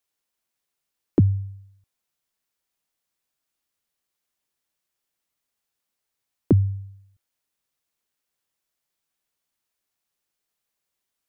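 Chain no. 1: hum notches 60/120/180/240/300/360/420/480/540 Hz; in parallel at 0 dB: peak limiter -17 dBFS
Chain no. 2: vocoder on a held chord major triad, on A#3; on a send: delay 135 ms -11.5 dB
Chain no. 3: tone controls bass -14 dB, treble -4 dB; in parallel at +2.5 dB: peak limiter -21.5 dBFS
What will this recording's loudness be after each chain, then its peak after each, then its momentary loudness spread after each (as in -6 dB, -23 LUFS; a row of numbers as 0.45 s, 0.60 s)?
-20.0 LUFS, -24.5 LUFS, -27.5 LUFS; -6.5 dBFS, -2.5 dBFS, -8.5 dBFS; 15 LU, 12 LU, 16 LU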